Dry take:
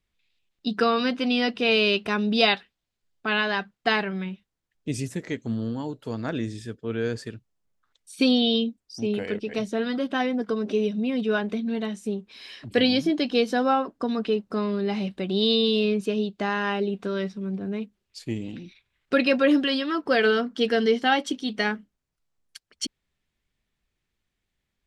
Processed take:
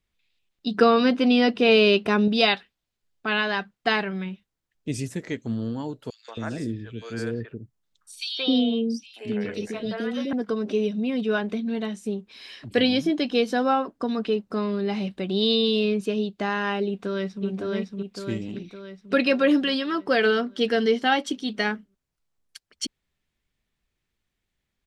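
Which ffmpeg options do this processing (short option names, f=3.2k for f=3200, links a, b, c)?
-filter_complex "[0:a]asettb=1/sr,asplit=3[a][b][c];[a]atrim=end=0.744[d];[b]atrim=start=0.74:end=2.28,asetpts=PTS-STARTPTS,afade=t=in:d=0.004:c=qsin,afade=t=out:st=1.536:d=0.004:c=qsin,equalizer=f=350:w=0.39:g=6[e];[c]atrim=start=2.276[f];[d][e]acrossfade=d=0.004:c1=hsin:c2=qsin[g];[g][f]acrossfade=d=0.004:c1=qsin:c2=hsin,asettb=1/sr,asplit=3[h][i][j];[h]atrim=end=6.104[k];[i]atrim=start=6.1:end=10.33,asetpts=PTS-STARTPTS,afade=t=in:d=0.004:c=qsin,afade=t=out:st=4.226:d=0.004:c=qsin,acrossover=split=530|2800[l][m][n];[m]adelay=180[o];[l]adelay=270[p];[p][o][n]amix=inputs=3:normalize=0,atrim=end_sample=186543[q];[j]atrim=start=10.326[r];[k][q]acrossfade=d=0.004:c1=hsin:c2=qsin[s];[s][r]acrossfade=d=0.004:c1=qsin:c2=hsin,asettb=1/sr,asplit=3[t][u][v];[t]atrim=end=12.824[w];[u]atrim=start=12.82:end=13.43,asetpts=PTS-STARTPTS,afade=t=in:d=0.004:c=qsin,afade=t=out:st=0.606:d=0.004:c=qsin,bandreject=f=4.5k:w=11[x];[v]atrim=start=13.426[y];[w][x]acrossfade=d=0.004:c1=hsin:c2=qsin[z];[z][y]acrossfade=d=0.004:c1=qsin:c2=hsin,asplit=2[aa][ab];[ab]afade=t=in:st=16.86:d=0.01,afade=t=out:st=17.46:d=0.01,aecho=0:1:560|1120|1680|2240|2800|3360|3920|4480:0.794328|0.436881|0.240284|0.132156|0.072686|0.0399773|0.0219875|0.0120931[ac];[aa][ac]amix=inputs=2:normalize=0"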